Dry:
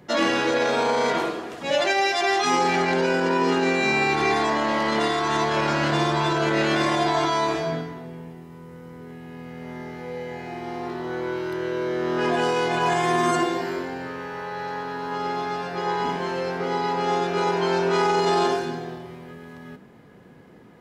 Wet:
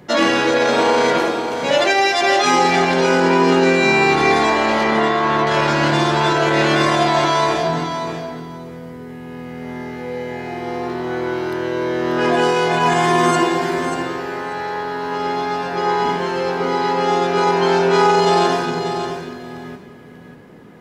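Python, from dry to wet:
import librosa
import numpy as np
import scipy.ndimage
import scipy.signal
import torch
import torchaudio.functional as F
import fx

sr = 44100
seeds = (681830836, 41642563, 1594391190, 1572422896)

p1 = fx.lowpass(x, sr, hz=2700.0, slope=12, at=(4.84, 5.47))
p2 = p1 + fx.echo_feedback(p1, sr, ms=588, feedback_pct=15, wet_db=-8.5, dry=0)
y = F.gain(torch.from_numpy(p2), 6.0).numpy()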